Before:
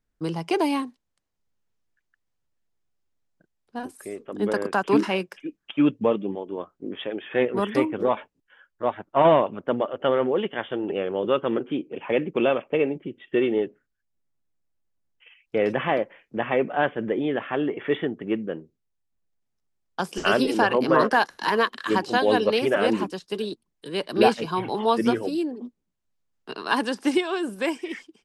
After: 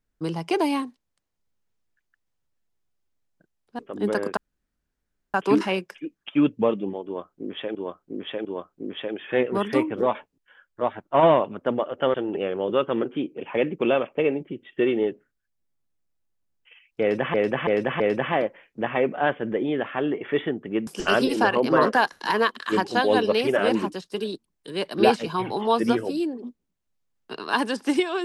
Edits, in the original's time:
3.79–4.18 cut
4.76 insert room tone 0.97 s
6.47–7.17 loop, 3 plays
10.16–10.69 cut
15.56–15.89 loop, 4 plays
18.43–20.05 cut

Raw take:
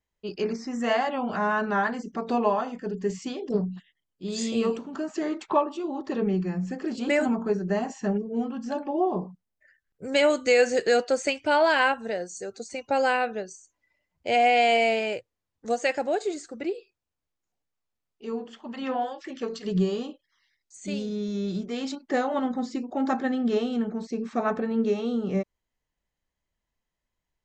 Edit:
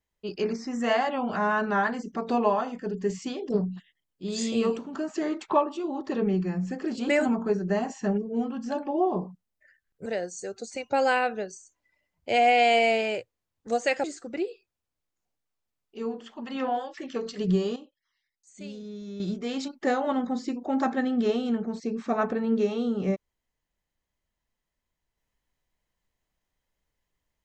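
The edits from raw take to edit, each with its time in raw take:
10.06–12.04 cut
16.02–16.31 cut
20.03–21.47 gain -9 dB

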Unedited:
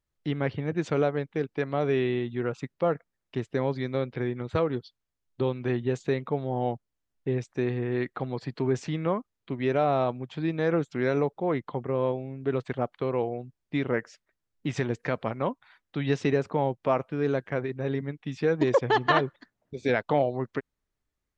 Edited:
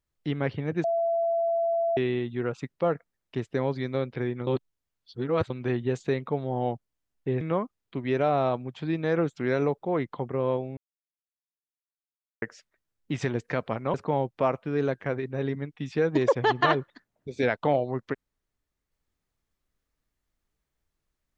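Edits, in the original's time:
0.84–1.97 bleep 672 Hz -22.5 dBFS
4.47–5.5 reverse
7.41–8.96 cut
12.32–13.97 mute
15.49–16.4 cut

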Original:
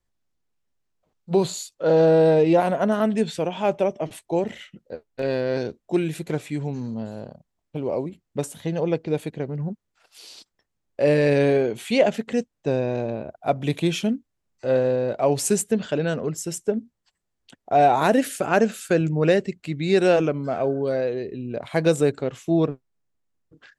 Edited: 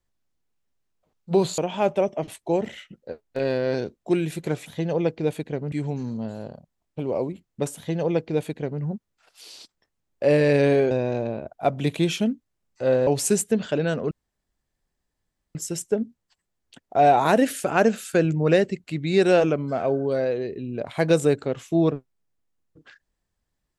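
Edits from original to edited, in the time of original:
1.58–3.41 cut
8.53–9.59 copy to 6.49
11.68–12.74 cut
14.9–15.27 cut
16.31 insert room tone 1.44 s

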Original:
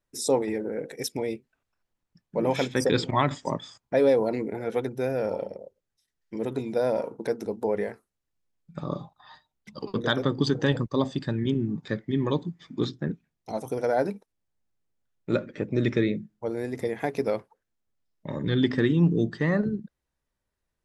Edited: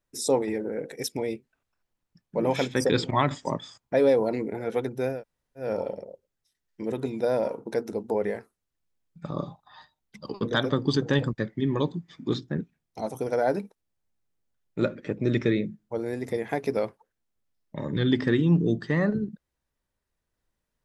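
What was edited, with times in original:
5.16 insert room tone 0.47 s, crossfade 0.16 s
10.91–11.89 cut

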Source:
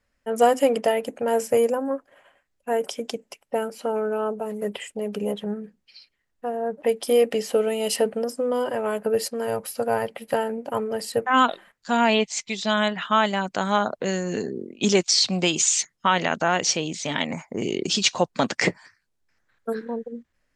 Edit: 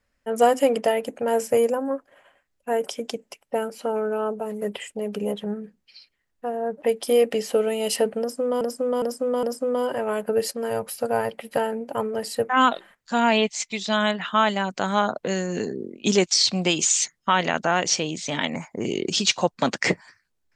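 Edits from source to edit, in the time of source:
8.2–8.61 loop, 4 plays

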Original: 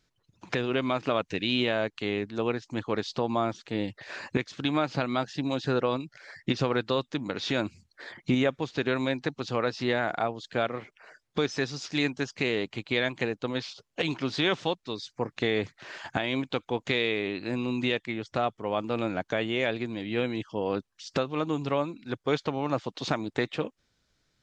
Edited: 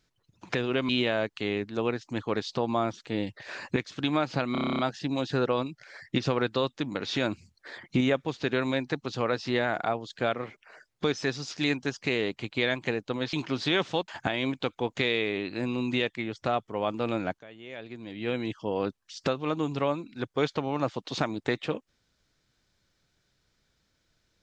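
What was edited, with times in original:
0.89–1.5 cut
5.13 stutter 0.03 s, 10 plays
13.67–14.05 cut
14.8–15.98 cut
19.29–20.33 fade in quadratic, from -20 dB

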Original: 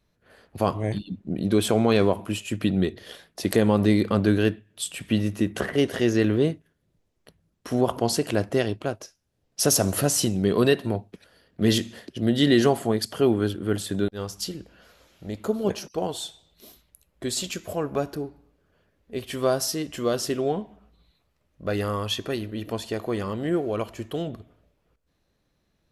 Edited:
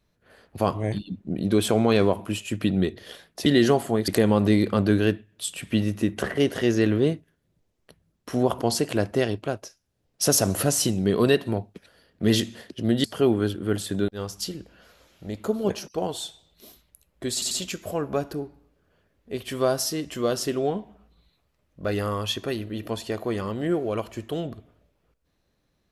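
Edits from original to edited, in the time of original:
12.42–13.04 move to 3.46
17.33 stutter 0.09 s, 3 plays

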